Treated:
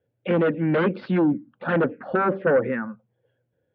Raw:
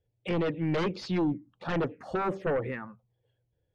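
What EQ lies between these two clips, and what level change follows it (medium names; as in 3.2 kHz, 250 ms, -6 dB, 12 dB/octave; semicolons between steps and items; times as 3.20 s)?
distance through air 160 m; cabinet simulation 190–3500 Hz, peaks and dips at 230 Hz +8 dB, 540 Hz +6 dB, 1.5 kHz +10 dB; bass shelf 240 Hz +6.5 dB; +4.5 dB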